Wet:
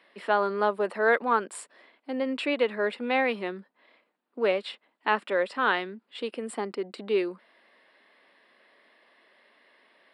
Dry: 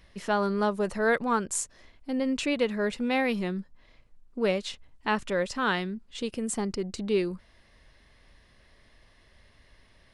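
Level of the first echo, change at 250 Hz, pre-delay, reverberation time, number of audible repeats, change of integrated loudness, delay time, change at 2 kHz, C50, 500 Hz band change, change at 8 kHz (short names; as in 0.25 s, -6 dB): none, -5.0 dB, none, none, none, +1.0 dB, none, +2.5 dB, none, +1.5 dB, -11.5 dB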